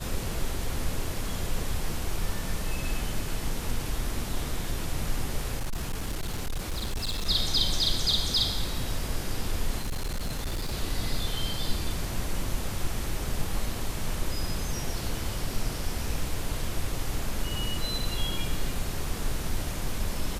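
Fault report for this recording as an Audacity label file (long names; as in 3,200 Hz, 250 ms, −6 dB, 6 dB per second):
5.570000	7.270000	clipping −26.5 dBFS
9.800000	10.740000	clipping −26.5 dBFS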